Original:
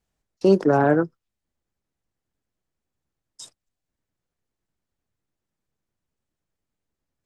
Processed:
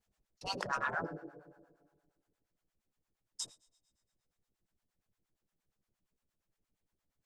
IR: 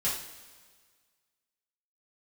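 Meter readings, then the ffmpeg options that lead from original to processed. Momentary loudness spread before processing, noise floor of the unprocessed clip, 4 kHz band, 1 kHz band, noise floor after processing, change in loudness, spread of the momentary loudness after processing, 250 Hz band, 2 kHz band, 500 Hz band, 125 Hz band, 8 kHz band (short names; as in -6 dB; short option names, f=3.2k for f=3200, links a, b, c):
7 LU, -85 dBFS, 0.0 dB, -12.0 dB, under -85 dBFS, -19.0 dB, 19 LU, -26.5 dB, -7.0 dB, -25.0 dB, -23.0 dB, 0.0 dB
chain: -filter_complex "[0:a]asplit=2[a][b];[1:a]atrim=start_sample=2205[c];[b][c]afir=irnorm=-1:irlink=0,volume=-19dB[d];[a][d]amix=inputs=2:normalize=0,afftfilt=real='re*lt(hypot(re,im),0.224)':imag='im*lt(hypot(re,im),0.224)':win_size=1024:overlap=0.75,acrossover=split=630[e][f];[e]aeval=exprs='val(0)*(1-1/2+1/2*cos(2*PI*8.6*n/s))':c=same[g];[f]aeval=exprs='val(0)*(1-1/2-1/2*cos(2*PI*8.6*n/s))':c=same[h];[g][h]amix=inputs=2:normalize=0,volume=1dB"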